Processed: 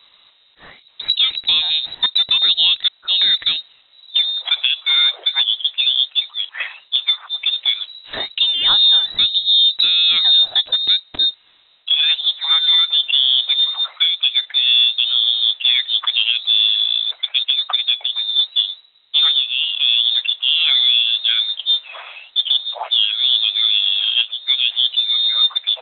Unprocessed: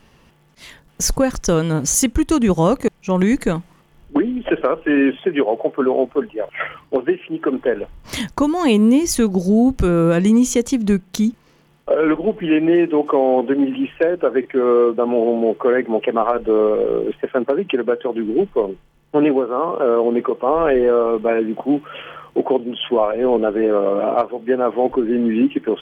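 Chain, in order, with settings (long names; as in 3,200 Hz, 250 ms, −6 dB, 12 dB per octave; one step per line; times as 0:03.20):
voice inversion scrambler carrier 3,900 Hz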